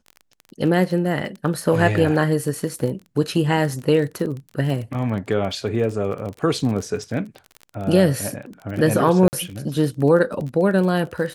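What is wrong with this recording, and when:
crackle 25/s -28 dBFS
9.28–9.33 gap 49 ms

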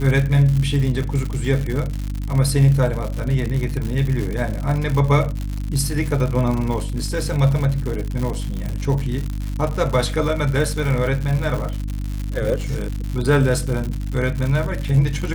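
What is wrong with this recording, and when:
crackle 140/s -24 dBFS
hum 50 Hz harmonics 6 -25 dBFS
1.03–1.04 gap 5.2 ms

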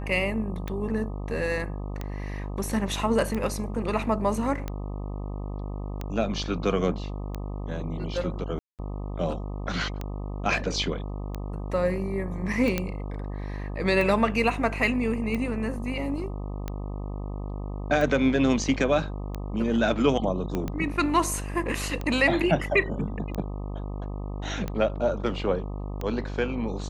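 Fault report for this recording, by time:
buzz 50 Hz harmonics 25 -33 dBFS
tick 45 rpm -18 dBFS
8.59–8.79 gap 0.198 s
12.78 pop -11 dBFS
20.55 pop -16 dBFS

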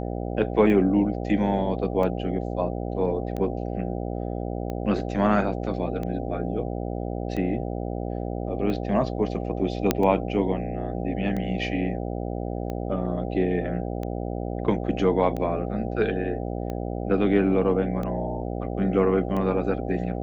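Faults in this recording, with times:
buzz 60 Hz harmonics 13 -30 dBFS
tick 45 rpm -20 dBFS
9.91 pop -5 dBFS

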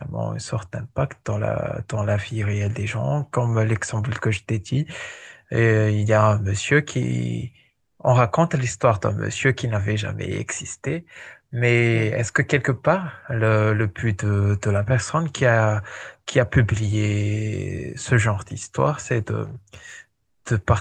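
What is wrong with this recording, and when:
19.44–20 clipped -32 dBFS

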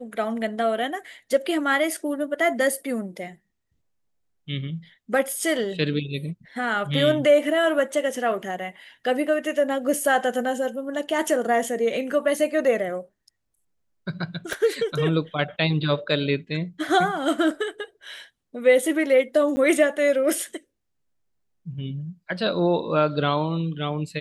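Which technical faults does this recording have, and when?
14.53 pop
19.56–19.57 gap 10 ms

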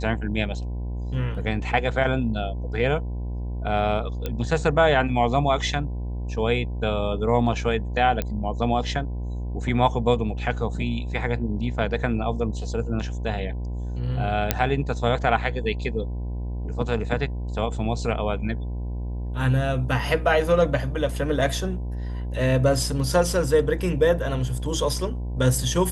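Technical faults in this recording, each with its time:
buzz 60 Hz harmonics 17 -29 dBFS
4.26 pop -14 dBFS
8.22 pop -12 dBFS
14.51 pop -2 dBFS

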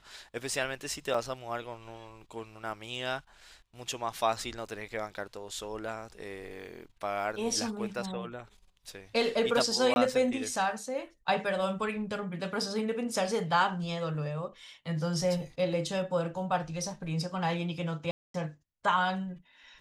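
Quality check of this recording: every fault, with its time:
1.14 gap 3.8 ms
9.94–9.96 gap 21 ms
18.11–18.34 gap 0.233 s

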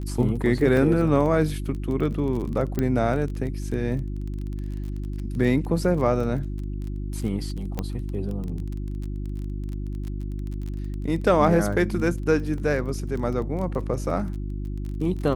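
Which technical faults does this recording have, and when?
crackle 24/s -31 dBFS
hum 50 Hz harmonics 7 -30 dBFS
0.77 gap 2.3 ms
2.79 pop -12 dBFS
7.79 pop -14 dBFS
12.58 gap 2.1 ms

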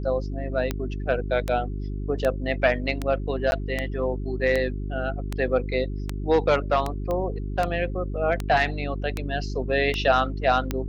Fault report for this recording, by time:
hum 50 Hz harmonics 8 -30 dBFS
tick 78 rpm -12 dBFS
3.51–3.52 gap 11 ms
7.11 pop -17 dBFS

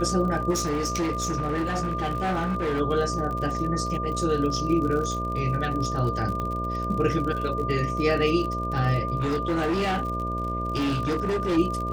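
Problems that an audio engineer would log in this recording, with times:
buzz 60 Hz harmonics 11 -31 dBFS
crackle 51/s -31 dBFS
tone 1200 Hz -29 dBFS
0.5–2.81 clipped -22.5 dBFS
6.4 pop -18 dBFS
9.2–11.58 clipped -21.5 dBFS

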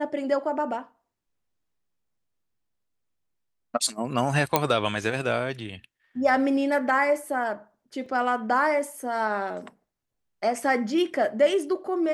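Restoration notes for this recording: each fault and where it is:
4.56 pop -4 dBFS
8.06 gap 3.6 ms

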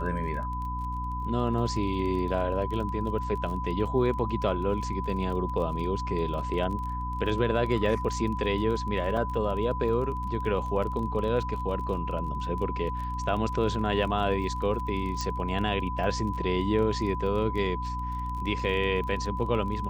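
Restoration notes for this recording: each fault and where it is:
crackle 24/s -35 dBFS
hum 60 Hz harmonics 5 -34 dBFS
tone 1000 Hz -33 dBFS
9.17 gap 3.2 ms
15.21 pop -18 dBFS

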